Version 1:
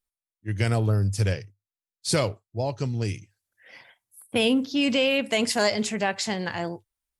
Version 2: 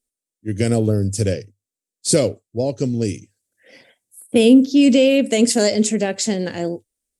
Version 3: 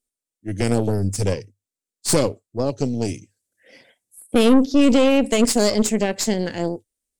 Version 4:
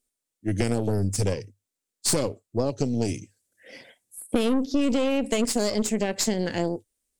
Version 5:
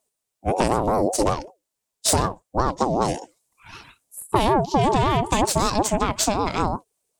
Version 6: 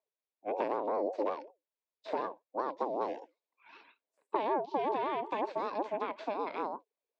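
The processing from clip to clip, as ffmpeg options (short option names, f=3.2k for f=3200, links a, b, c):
-af "equalizer=f=250:t=o:w=1:g=11,equalizer=f=500:t=o:w=1:g=10,equalizer=f=1k:t=o:w=1:g=-10,equalizer=f=8k:t=o:w=1:g=12"
-af "aeval=exprs='(tanh(3.98*val(0)+0.7)-tanh(0.7))/3.98':c=same,volume=2dB"
-af "acompressor=threshold=-25dB:ratio=4,volume=3.5dB"
-af "aeval=exprs='val(0)*sin(2*PI*530*n/s+530*0.25/5.3*sin(2*PI*5.3*n/s))':c=same,volume=6.5dB"
-filter_complex "[0:a]acrossover=split=2600[a][b];[b]acompressor=threshold=-34dB:ratio=4:attack=1:release=60[c];[a][c]amix=inputs=2:normalize=0,highpass=f=330:w=0.5412,highpass=f=330:w=1.3066,equalizer=f=360:t=q:w=4:g=-4,equalizer=f=750:t=q:w=4:g=-5,equalizer=f=1.3k:t=q:w=4:g=-9,equalizer=f=1.9k:t=q:w=4:g=-4,equalizer=f=3k:t=q:w=4:g=-8,lowpass=f=3.3k:w=0.5412,lowpass=f=3.3k:w=1.3066,volume=-8dB"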